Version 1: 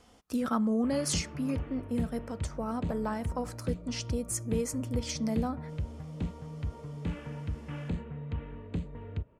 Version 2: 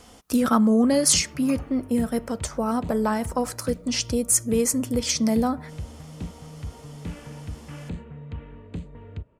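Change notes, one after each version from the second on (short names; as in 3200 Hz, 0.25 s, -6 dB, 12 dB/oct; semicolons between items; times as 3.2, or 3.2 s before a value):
speech +9.5 dB; master: add high shelf 7100 Hz +8.5 dB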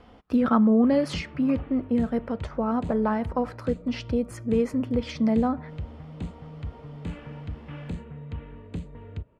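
speech: add air absorption 390 m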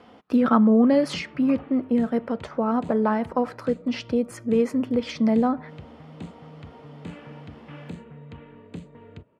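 speech +3.0 dB; master: add HPF 160 Hz 12 dB/oct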